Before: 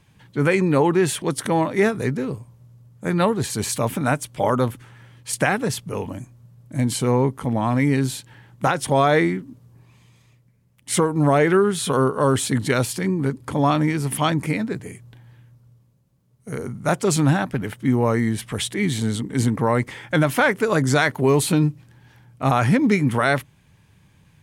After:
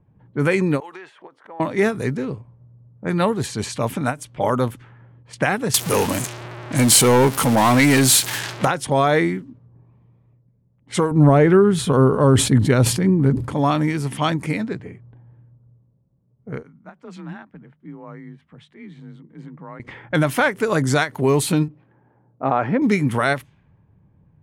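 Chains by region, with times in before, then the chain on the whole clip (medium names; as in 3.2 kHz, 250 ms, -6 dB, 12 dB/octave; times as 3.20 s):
0.80–1.60 s: high-pass 730 Hz + compression 16:1, threshold -32 dBFS
5.74–8.65 s: jump at every zero crossing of -33 dBFS + tilt EQ +2.5 dB/octave + waveshaping leveller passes 3
11.11–13.49 s: tilt EQ -2.5 dB/octave + decay stretcher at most 93 dB/s
16.63–19.80 s: amplifier tone stack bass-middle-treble 5-5-5 + hum notches 60/120 Hz + frequency shift +31 Hz
21.68–22.82 s: band-pass 460–2900 Hz + tilt EQ -4.5 dB/octave
whole clip: level-controlled noise filter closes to 680 Hz, open at -18 dBFS; endings held to a fixed fall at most 280 dB/s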